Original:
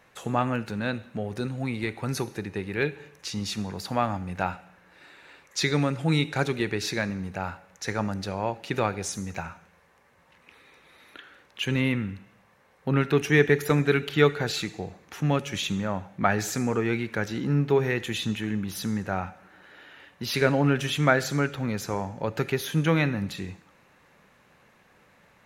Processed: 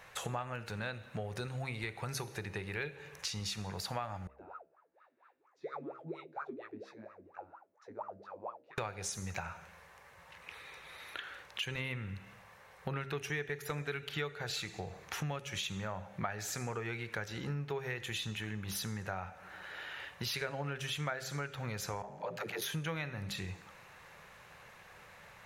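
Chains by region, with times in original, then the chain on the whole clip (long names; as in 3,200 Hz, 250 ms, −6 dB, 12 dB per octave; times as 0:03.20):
0:04.27–0:08.78: double-tracking delay 19 ms −3.5 dB + LFO wah 4.3 Hz 240–1,300 Hz, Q 21
0:22.02–0:22.62: Chebyshev high-pass with heavy ripple 160 Hz, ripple 6 dB + ring modulation 49 Hz + all-pass dispersion lows, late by 74 ms, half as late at 370 Hz
whole clip: parametric band 260 Hz −13.5 dB 1 octave; hum removal 66.64 Hz, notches 10; downward compressor 5 to 1, threshold −42 dBFS; level +5 dB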